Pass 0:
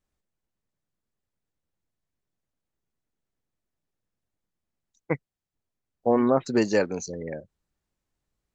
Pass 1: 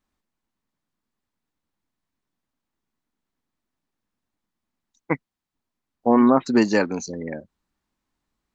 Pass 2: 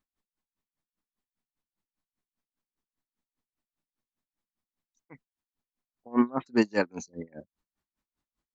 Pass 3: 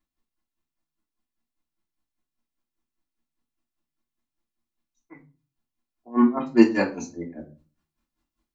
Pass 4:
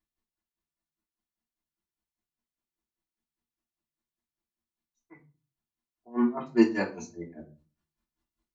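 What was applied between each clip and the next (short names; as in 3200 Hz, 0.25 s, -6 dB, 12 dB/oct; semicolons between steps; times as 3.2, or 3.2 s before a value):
graphic EQ 125/250/500/1000/2000/4000 Hz -3/+9/-3/+8/+3/+4 dB
dB-linear tremolo 5 Hz, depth 29 dB; gain -3 dB
vocal rider 2 s; reverb RT60 0.35 s, pre-delay 3 ms, DRR -5.5 dB; gain -3.5 dB
notch comb 270 Hz; gain -4.5 dB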